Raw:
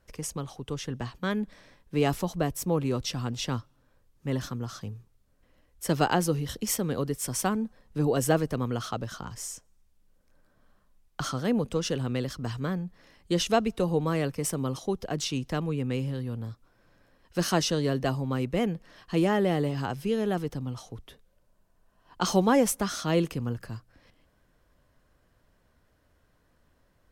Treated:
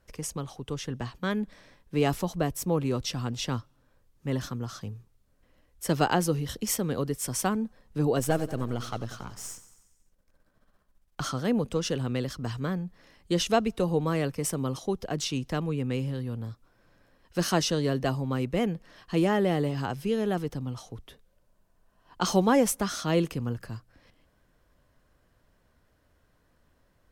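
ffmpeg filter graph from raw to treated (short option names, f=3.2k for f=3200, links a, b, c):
-filter_complex "[0:a]asettb=1/sr,asplit=3[a][b][c];[a]atrim=end=8.194[d];[b]atrim=start=8.19:end=11.2,asetpts=PTS-STARTPTS,afade=t=in:d=0.004:c=qsin,afade=t=out:st=3.006:d=0.004:c=qsin,aeval=exprs='if(lt(val(0),0),0.447*val(0),val(0))':c=same,aecho=1:1:92|184|276|368|460|552:0.178|0.105|0.0619|0.0365|0.0215|0.0127,atrim=end_sample=132741[e];[c]atrim=start=11.196[f];[d][e]acrossfade=d=0.004:c1=hsin:c2=qsin[g];[g][f]acrossfade=d=0.004:c1=qsin:c2=hsin"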